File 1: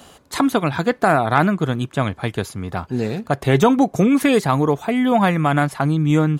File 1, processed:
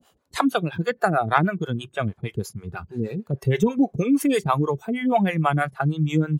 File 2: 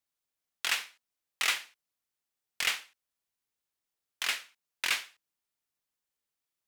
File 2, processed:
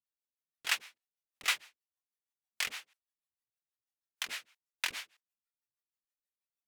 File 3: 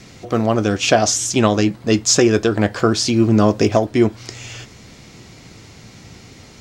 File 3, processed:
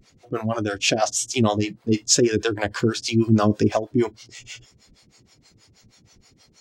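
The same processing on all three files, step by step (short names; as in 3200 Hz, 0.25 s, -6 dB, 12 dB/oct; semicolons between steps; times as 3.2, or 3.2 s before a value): harmonic tremolo 6.3 Hz, depth 100%, crossover 430 Hz; spectral noise reduction 12 dB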